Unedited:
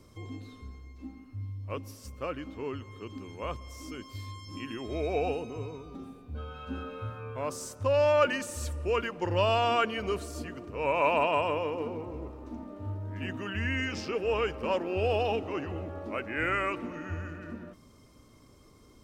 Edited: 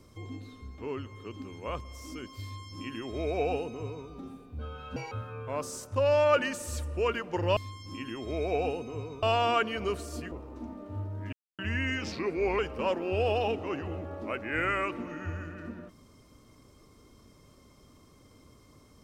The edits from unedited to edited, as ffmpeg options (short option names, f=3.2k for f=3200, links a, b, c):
-filter_complex "[0:a]asplit=11[a][b][c][d][e][f][g][h][i][j][k];[a]atrim=end=0.782[l];[b]atrim=start=2.538:end=6.724[m];[c]atrim=start=6.72:end=7,asetpts=PTS-STARTPTS,asetrate=78939,aresample=44100,atrim=end_sample=6898,asetpts=PTS-STARTPTS[n];[d]atrim=start=6.996:end=9.452[o];[e]atrim=start=4.188:end=5.852[p];[f]atrim=start=9.448:end=10.542[q];[g]atrim=start=12.218:end=13.23,asetpts=PTS-STARTPTS,afade=t=out:st=1.008:d=0.004:c=hsin[r];[h]atrim=start=13.23:end=13.49,asetpts=PTS-STARTPTS,volume=0[s];[i]atrim=start=13.49:end=14.024,asetpts=PTS-STARTPTS,afade=t=in:d=0.004:c=hsin[t];[j]atrim=start=14.02:end=14.43,asetpts=PTS-STARTPTS,asetrate=38367,aresample=44100[u];[k]atrim=start=14.426[v];[l][m]acrossfade=d=0.004:c1=hsin:c2=hsin[w];[w][n]acrossfade=d=0.004:c1=hsin:c2=hsin[x];[x][o]acrossfade=d=0.004:c1=hsin:c2=hsin[y];[y][p]acrossfade=d=0.004:c1=hsin:c2=hsin[z];[z][q]acrossfade=d=0.004:c1=hsin:c2=hsin[aa];[r][s][t]concat=n=3:v=0:a=1[ab];[aa][ab]acrossfade=d=0.004:c1=hsin:c2=hsin[ac];[ac][u]acrossfade=d=0.004:c1=hsin:c2=hsin[ad];[ad][v]acrossfade=d=0.004:c1=hsin:c2=hsin"